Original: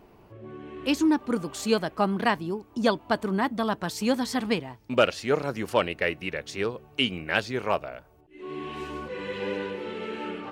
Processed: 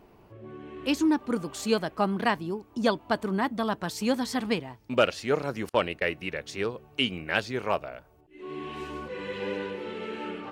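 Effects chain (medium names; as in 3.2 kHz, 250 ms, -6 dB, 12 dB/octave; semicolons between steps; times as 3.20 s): 5.69–6.12 s: gate -35 dBFS, range -32 dB; trim -1.5 dB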